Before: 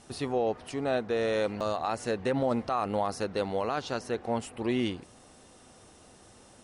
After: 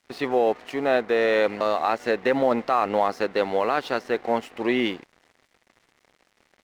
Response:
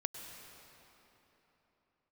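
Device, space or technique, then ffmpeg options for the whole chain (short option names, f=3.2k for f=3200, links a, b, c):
pocket radio on a weak battery: -af "highpass=270,lowpass=3.9k,aeval=exprs='sgn(val(0))*max(abs(val(0))-0.00211,0)':c=same,equalizer=f=2k:t=o:w=0.45:g=5.5,volume=8dB"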